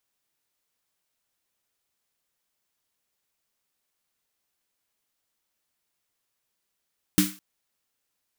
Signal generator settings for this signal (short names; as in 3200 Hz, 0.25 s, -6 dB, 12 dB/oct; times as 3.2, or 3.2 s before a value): snare drum length 0.21 s, tones 190 Hz, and 300 Hz, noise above 1200 Hz, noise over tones -4.5 dB, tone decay 0.27 s, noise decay 0.36 s